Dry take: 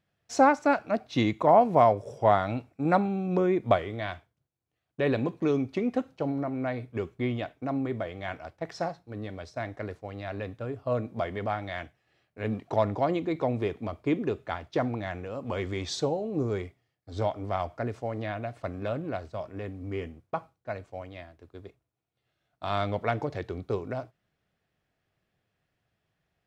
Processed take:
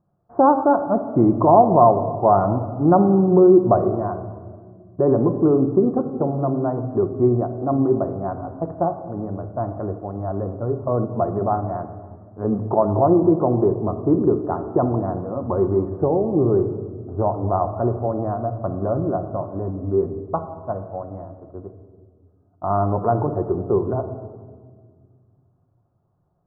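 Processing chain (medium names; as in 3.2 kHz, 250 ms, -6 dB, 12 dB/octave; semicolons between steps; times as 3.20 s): steep low-pass 1.2 kHz 48 dB/octave; band-stop 510 Hz, Q 12; dynamic bell 380 Hz, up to +6 dB, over -43 dBFS, Q 4.1; in parallel at +2 dB: peak limiter -19 dBFS, peak gain reduction 10 dB; on the sum: simulated room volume 2300 m³, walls mixed, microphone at 0.89 m; trim +2 dB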